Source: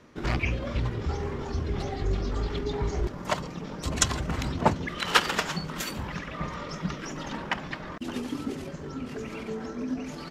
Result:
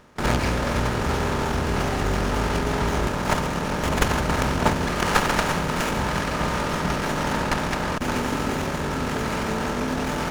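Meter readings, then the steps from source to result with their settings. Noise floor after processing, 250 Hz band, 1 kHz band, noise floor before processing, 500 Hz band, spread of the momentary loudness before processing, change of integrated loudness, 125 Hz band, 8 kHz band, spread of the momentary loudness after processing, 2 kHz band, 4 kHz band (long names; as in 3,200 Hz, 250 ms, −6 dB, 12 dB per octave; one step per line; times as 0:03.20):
−27 dBFS, +7.0 dB, +8.5 dB, −40 dBFS, +8.0 dB, 10 LU, +6.5 dB, +6.0 dB, +2.5 dB, 4 LU, +7.0 dB, +3.5 dB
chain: compressor on every frequency bin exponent 0.4
noise gate with hold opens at −15 dBFS
windowed peak hold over 9 samples
level −1 dB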